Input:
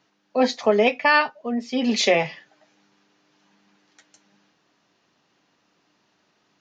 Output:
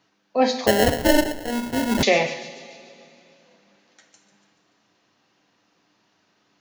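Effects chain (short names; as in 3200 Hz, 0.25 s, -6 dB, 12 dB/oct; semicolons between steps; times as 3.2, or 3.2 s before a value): thin delay 0.144 s, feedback 58%, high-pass 3300 Hz, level -12 dB; two-slope reverb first 0.6 s, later 3 s, from -16 dB, DRR 5.5 dB; 0.67–2.03 sample-rate reducer 1200 Hz, jitter 0%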